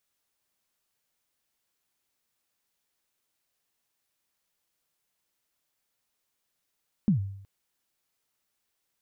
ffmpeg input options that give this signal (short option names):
-f lavfi -i "aevalsrc='0.15*pow(10,-3*t/0.71)*sin(2*PI*(230*0.112/log(98/230)*(exp(log(98/230)*min(t,0.112)/0.112)-1)+98*max(t-0.112,0)))':d=0.37:s=44100"